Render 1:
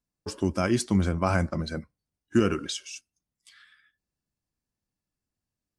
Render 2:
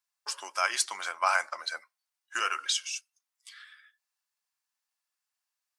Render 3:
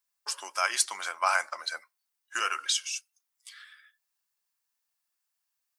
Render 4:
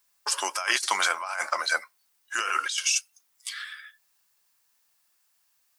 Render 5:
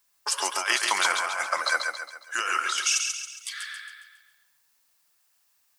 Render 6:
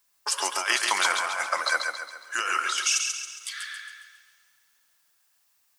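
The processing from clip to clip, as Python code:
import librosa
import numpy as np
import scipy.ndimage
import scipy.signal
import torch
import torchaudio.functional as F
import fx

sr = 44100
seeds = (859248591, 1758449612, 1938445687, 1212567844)

y1 = scipy.signal.sosfilt(scipy.signal.butter(4, 890.0, 'highpass', fs=sr, output='sos'), x)
y1 = y1 * librosa.db_to_amplitude(5.0)
y2 = fx.high_shelf(y1, sr, hz=11000.0, db=9.5)
y3 = fx.over_compress(y2, sr, threshold_db=-35.0, ratio=-1.0)
y3 = y3 * librosa.db_to_amplitude(8.0)
y4 = fx.echo_feedback(y3, sr, ms=137, feedback_pct=46, wet_db=-5)
y5 = fx.rev_plate(y4, sr, seeds[0], rt60_s=3.0, hf_ratio=0.95, predelay_ms=0, drr_db=18.0)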